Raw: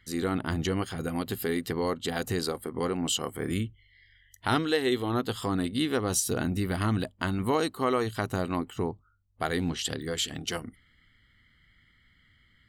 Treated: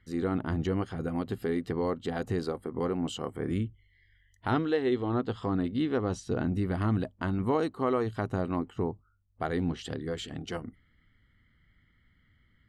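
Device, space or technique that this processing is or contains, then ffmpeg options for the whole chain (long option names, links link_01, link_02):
through cloth: -filter_complex "[0:a]lowpass=9200,highshelf=frequency=2200:gain=-15,asettb=1/sr,asplit=3[link_01][link_02][link_03];[link_01]atrim=end=4.514[link_04];[link_02]atrim=start=4.51:end=6.55,asetpts=PTS-STARTPTS,afade=type=in:duration=0.004:curve=qsin,afade=type=out:start_time=2.036:duration=0.004:curve=qsin,lowpass=5900[link_05];[link_03]atrim=start=6.546[link_06];[link_04][link_05]acrossfade=duration=0.004:curve1=hsin:curve2=qsin[link_07];[link_07][link_06]acrossfade=duration=0.004:curve1=qsin:curve2=hsin"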